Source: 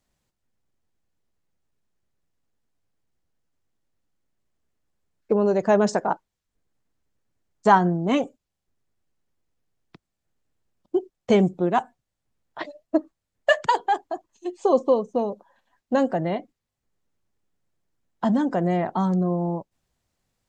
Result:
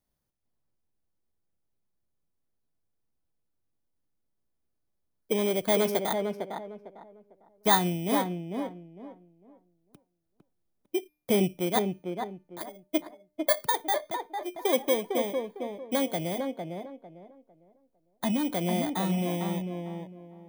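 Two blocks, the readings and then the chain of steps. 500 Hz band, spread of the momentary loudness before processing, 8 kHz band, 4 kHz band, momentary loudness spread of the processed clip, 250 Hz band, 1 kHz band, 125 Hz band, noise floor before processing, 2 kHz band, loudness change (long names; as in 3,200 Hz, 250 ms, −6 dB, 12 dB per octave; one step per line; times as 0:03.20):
−5.5 dB, 13 LU, +8.0 dB, +3.0 dB, 16 LU, −5.5 dB, −7.0 dB, −5.5 dB, −83 dBFS, −6.0 dB, −6.0 dB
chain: samples in bit-reversed order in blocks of 16 samples
tuned comb filter 300 Hz, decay 0.49 s, harmonics all, mix 30%
on a send: tape delay 452 ms, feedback 30%, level −3.5 dB, low-pass 1,300 Hz
on the sum: level −3.5 dB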